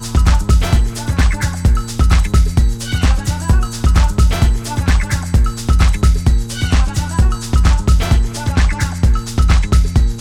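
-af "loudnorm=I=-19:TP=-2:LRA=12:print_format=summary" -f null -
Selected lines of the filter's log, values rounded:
Input Integrated:    -15.4 LUFS
Input True Peak:      -2.8 dBTP
Input LRA:             0.5 LU
Input Threshold:     -25.4 LUFS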